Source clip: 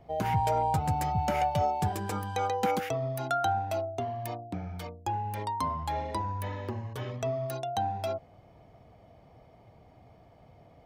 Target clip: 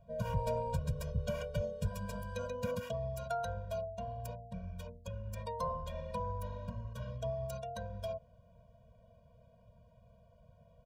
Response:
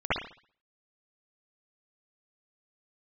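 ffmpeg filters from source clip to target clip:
-filter_complex "[0:a]asplit=3[s0][s1][s2];[s1]asetrate=22050,aresample=44100,atempo=2,volume=0.708[s3];[s2]asetrate=29433,aresample=44100,atempo=1.49831,volume=0.251[s4];[s0][s3][s4]amix=inputs=3:normalize=0,asuperstop=centerf=2000:order=4:qfactor=6.5,afftfilt=real='re*eq(mod(floor(b*sr/1024/230),2),0)':imag='im*eq(mod(floor(b*sr/1024/230),2),0)':win_size=1024:overlap=0.75,volume=0.473"

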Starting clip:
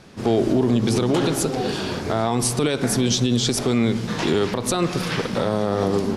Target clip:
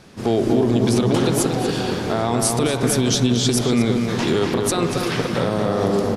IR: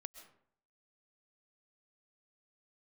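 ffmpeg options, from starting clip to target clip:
-filter_complex "[0:a]highshelf=f=9800:g=5.5,asplit=2[s0][s1];[s1]adelay=236,lowpass=f=2400:p=1,volume=0.668,asplit=2[s2][s3];[s3]adelay=236,lowpass=f=2400:p=1,volume=0.55,asplit=2[s4][s5];[s5]adelay=236,lowpass=f=2400:p=1,volume=0.55,asplit=2[s6][s7];[s7]adelay=236,lowpass=f=2400:p=1,volume=0.55,asplit=2[s8][s9];[s9]adelay=236,lowpass=f=2400:p=1,volume=0.55,asplit=2[s10][s11];[s11]adelay=236,lowpass=f=2400:p=1,volume=0.55,asplit=2[s12][s13];[s13]adelay=236,lowpass=f=2400:p=1,volume=0.55,asplit=2[s14][s15];[s15]adelay=236,lowpass=f=2400:p=1,volume=0.55[s16];[s2][s4][s6][s8][s10][s12][s14][s16]amix=inputs=8:normalize=0[s17];[s0][s17]amix=inputs=2:normalize=0"

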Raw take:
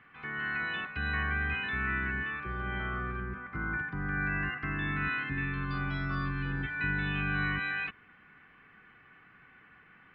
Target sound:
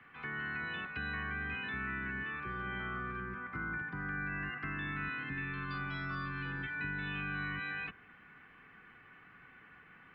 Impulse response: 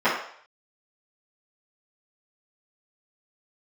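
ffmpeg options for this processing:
-filter_complex "[0:a]asplit=2[s0][s1];[1:a]atrim=start_sample=2205,lowpass=1500[s2];[s1][s2]afir=irnorm=-1:irlink=0,volume=0.0224[s3];[s0][s3]amix=inputs=2:normalize=0,acrossover=split=120|260|960[s4][s5][s6][s7];[s4]acompressor=threshold=0.00224:ratio=4[s8];[s5]acompressor=threshold=0.00562:ratio=4[s9];[s6]acompressor=threshold=0.00282:ratio=4[s10];[s7]acompressor=threshold=0.0112:ratio=4[s11];[s8][s9][s10][s11]amix=inputs=4:normalize=0"

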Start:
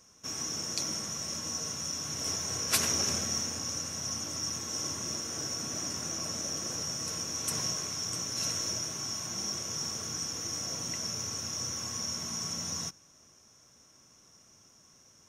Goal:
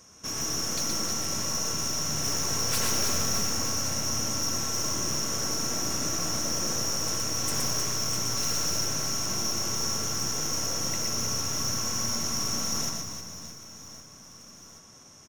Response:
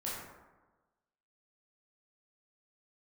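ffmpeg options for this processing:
-filter_complex "[0:a]aeval=exprs='(tanh(50.1*val(0)+0.4)-tanh(0.4))/50.1':c=same,aecho=1:1:120|312|619.2|1111|1897:0.631|0.398|0.251|0.158|0.1,asplit=2[s0][s1];[1:a]atrim=start_sample=2205,lowpass=2600[s2];[s1][s2]afir=irnorm=-1:irlink=0,volume=0.282[s3];[s0][s3]amix=inputs=2:normalize=0,volume=2.24"

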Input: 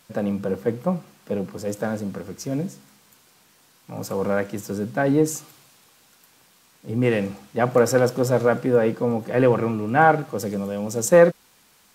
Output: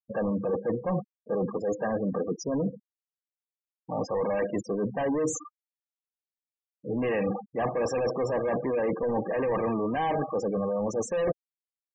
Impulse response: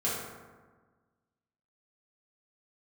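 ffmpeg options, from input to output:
-filter_complex "[0:a]asplit=2[s0][s1];[s1]highpass=f=720:p=1,volume=31.6,asoftclip=type=tanh:threshold=0.708[s2];[s0][s2]amix=inputs=2:normalize=0,lowpass=f=2100:p=1,volume=0.501,afftfilt=real='re*gte(hypot(re,im),0.178)':imag='im*gte(hypot(re,im),0.178)':win_size=1024:overlap=0.75,areverse,acompressor=threshold=0.112:ratio=8,areverse,asuperstop=centerf=1400:order=12:qfactor=4.1,volume=0.473"

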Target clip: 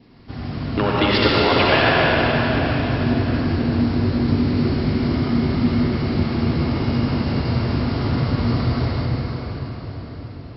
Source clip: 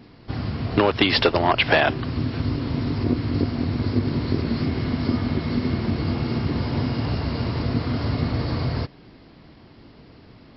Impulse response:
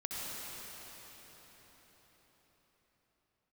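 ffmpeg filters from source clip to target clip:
-filter_complex "[0:a]adynamicequalizer=threshold=0.00708:dfrequency=1400:dqfactor=4.8:tfrequency=1400:tqfactor=4.8:attack=5:release=100:ratio=0.375:range=2.5:mode=boostabove:tftype=bell[s0];[1:a]atrim=start_sample=2205[s1];[s0][s1]afir=irnorm=-1:irlink=0"

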